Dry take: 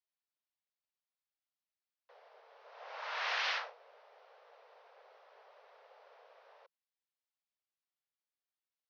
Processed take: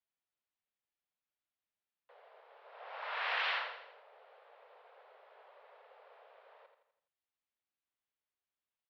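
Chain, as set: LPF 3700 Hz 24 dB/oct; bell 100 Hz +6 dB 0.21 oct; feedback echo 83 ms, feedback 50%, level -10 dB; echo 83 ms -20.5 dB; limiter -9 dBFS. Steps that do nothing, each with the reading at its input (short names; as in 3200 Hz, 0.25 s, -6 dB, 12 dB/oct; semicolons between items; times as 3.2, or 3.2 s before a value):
bell 100 Hz: input band starts at 360 Hz; limiter -9 dBFS: input peak -23.0 dBFS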